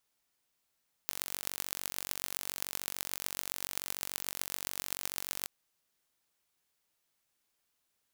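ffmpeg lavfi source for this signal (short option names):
-f lavfi -i "aevalsrc='0.531*eq(mod(n,940),0)*(0.5+0.5*eq(mod(n,5640),0))':d=4.37:s=44100"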